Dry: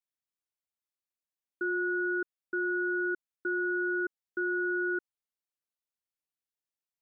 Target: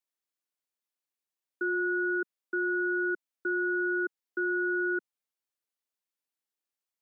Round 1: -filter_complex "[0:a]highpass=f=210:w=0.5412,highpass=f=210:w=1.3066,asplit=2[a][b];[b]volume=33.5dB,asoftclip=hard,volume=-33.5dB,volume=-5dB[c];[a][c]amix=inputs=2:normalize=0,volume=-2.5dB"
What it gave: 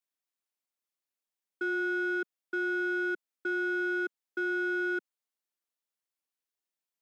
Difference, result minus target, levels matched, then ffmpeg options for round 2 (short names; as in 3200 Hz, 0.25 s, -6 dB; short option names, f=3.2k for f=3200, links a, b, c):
overloaded stage: distortion +39 dB
-filter_complex "[0:a]highpass=f=210:w=0.5412,highpass=f=210:w=1.3066,asplit=2[a][b];[b]volume=24.5dB,asoftclip=hard,volume=-24.5dB,volume=-5dB[c];[a][c]amix=inputs=2:normalize=0,volume=-2.5dB"